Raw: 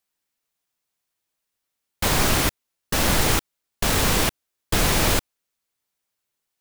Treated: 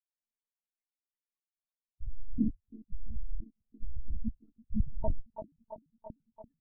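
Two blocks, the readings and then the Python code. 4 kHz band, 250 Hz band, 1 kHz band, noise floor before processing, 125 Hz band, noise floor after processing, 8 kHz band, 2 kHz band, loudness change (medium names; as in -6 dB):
under -40 dB, -9.0 dB, -25.0 dB, -81 dBFS, -14.5 dB, under -85 dBFS, under -40 dB, under -40 dB, -18.5 dB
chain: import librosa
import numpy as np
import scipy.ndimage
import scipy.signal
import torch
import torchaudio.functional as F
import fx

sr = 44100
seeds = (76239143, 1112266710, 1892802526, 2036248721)

y = fx.octave_divider(x, sr, octaves=2, level_db=-3.0)
y = fx.level_steps(y, sr, step_db=23)
y = fx.spec_topn(y, sr, count=2)
y = fx.low_shelf_res(y, sr, hz=190.0, db=-11.0, q=3.0)
y = fx.echo_wet_bandpass(y, sr, ms=337, feedback_pct=71, hz=830.0, wet_db=-7)
y = fx.lpc_monotone(y, sr, seeds[0], pitch_hz=220.0, order=8)
y = y * librosa.db_to_amplitude(14.0)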